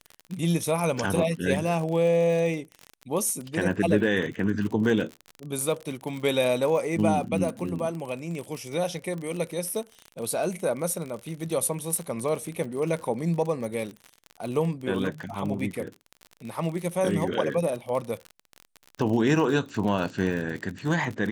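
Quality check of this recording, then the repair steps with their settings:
surface crackle 46 per second −31 dBFS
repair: click removal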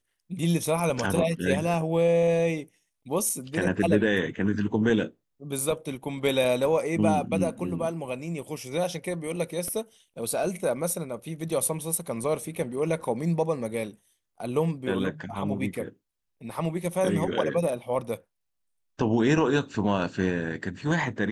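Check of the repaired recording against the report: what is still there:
none of them is left

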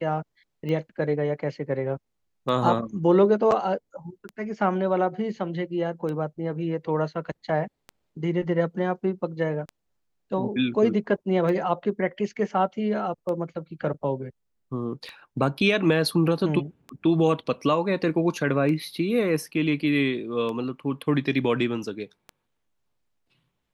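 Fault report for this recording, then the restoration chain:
scratch tick 33 1/3 rpm −22 dBFS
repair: click removal

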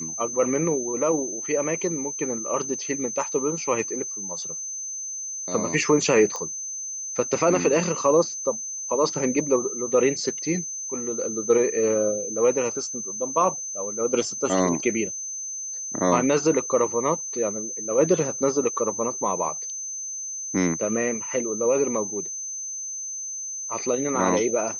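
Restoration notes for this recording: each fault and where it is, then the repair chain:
whistle 6,200 Hz −30 dBFS
0:06.36: click −18 dBFS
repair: click removal
notch filter 6,200 Hz, Q 30

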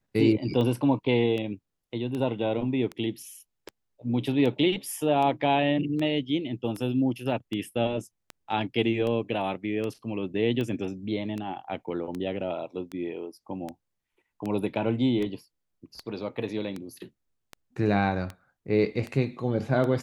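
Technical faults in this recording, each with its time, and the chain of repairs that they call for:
scratch tick 78 rpm −21 dBFS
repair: click removal

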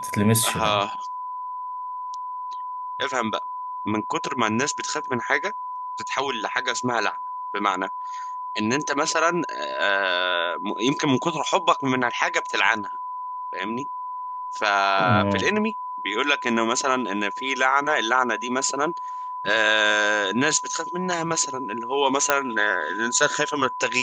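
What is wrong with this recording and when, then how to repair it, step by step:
whistle 1,000 Hz −29 dBFS
0:22.30: click −2 dBFS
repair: click removal
notch filter 1,000 Hz, Q 30

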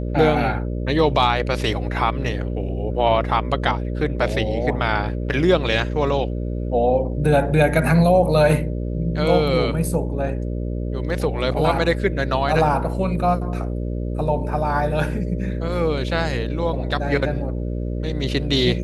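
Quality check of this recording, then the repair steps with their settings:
mains buzz 60 Hz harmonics 10 −25 dBFS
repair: hum removal 60 Hz, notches 10

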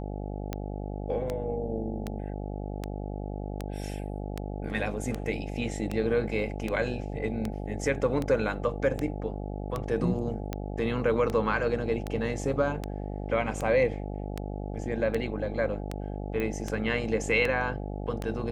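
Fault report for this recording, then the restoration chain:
mains buzz 50 Hz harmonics 17 −35 dBFS
scratch tick 78 rpm −17 dBFS
0:16.40: click −20 dBFS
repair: click removal
hum removal 50 Hz, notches 17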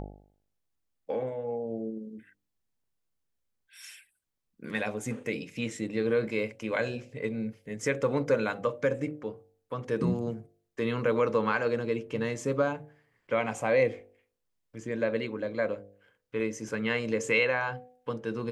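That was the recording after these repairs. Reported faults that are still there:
0:16.40: click

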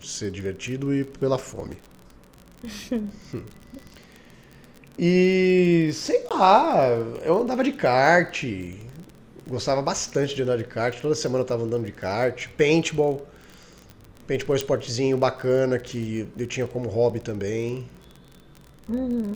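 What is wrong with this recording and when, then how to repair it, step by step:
surface crackle 34 per second −32 dBFS
0:06.29–0:06.31: drop-out 17 ms
0:14.61: click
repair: click removal
repair the gap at 0:06.29, 17 ms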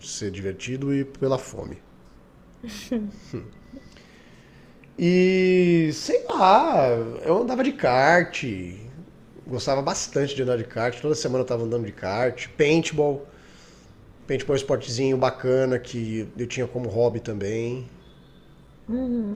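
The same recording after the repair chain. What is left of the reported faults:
none of them is left

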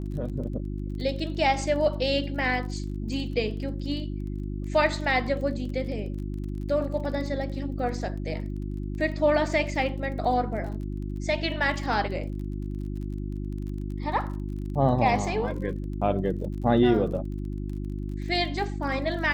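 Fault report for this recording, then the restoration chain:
surface crackle 29 per second −37 dBFS
mains hum 50 Hz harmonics 7 −32 dBFS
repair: click removal
hum removal 50 Hz, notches 7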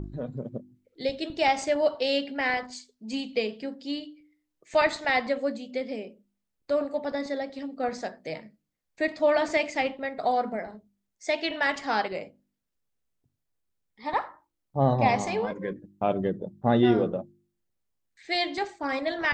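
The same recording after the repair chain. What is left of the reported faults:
none of them is left

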